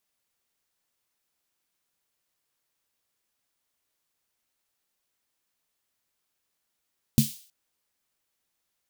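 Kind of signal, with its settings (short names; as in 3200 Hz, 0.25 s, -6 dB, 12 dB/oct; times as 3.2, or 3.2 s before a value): snare drum length 0.32 s, tones 140 Hz, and 220 Hz, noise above 3000 Hz, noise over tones -11 dB, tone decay 0.17 s, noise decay 0.48 s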